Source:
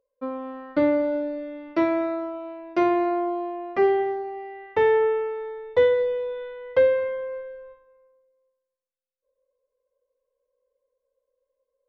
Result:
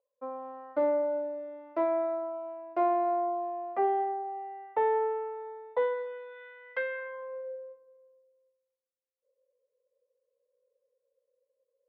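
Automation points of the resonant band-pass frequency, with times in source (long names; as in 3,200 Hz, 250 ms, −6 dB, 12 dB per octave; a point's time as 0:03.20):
resonant band-pass, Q 2.3
0:05.65 770 Hz
0:06.40 1,800 Hz
0:06.96 1,800 Hz
0:07.58 470 Hz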